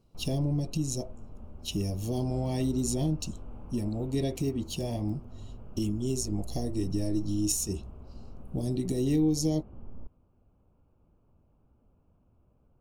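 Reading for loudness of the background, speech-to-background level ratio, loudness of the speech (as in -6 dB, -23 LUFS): -47.5 LUFS, 16.5 dB, -31.0 LUFS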